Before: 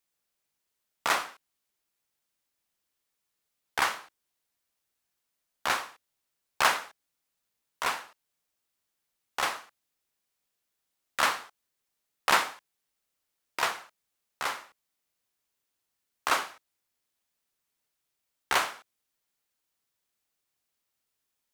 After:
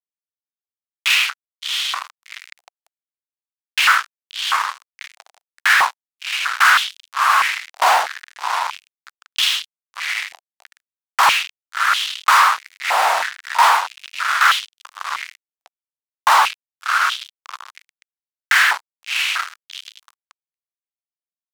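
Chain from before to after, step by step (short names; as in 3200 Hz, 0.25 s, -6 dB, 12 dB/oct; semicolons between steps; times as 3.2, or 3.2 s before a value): LPF 4400 Hz 12 dB/oct; diffused feedback echo 0.703 s, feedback 46%, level -14 dB; fuzz box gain 45 dB, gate -45 dBFS; stepped high-pass 3.1 Hz 740–3200 Hz; gain -3 dB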